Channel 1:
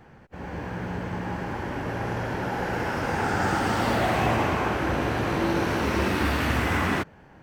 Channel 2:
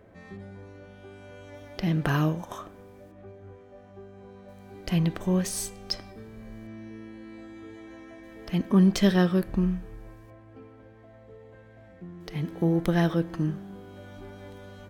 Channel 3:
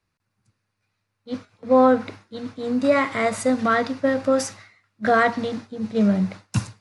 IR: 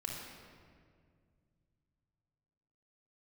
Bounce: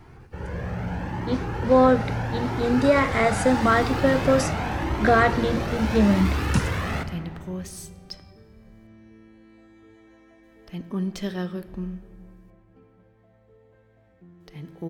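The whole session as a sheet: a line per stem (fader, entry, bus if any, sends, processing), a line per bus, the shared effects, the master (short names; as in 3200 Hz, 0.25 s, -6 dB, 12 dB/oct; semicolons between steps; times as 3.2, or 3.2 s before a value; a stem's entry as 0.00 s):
+2.0 dB, 0.00 s, send -6.5 dB, soft clip -26 dBFS, distortion -10 dB; low shelf 350 Hz +5 dB; cascading flanger rising 0.81 Hz
-9.0 dB, 2.20 s, send -13.5 dB, dry
0.0 dB, 0.00 s, no send, three-band squash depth 40%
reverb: on, RT60 2.1 s, pre-delay 27 ms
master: dry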